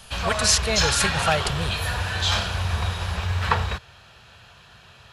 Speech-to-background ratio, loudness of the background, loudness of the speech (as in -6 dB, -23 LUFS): 1.0 dB, -24.5 LUFS, -23.5 LUFS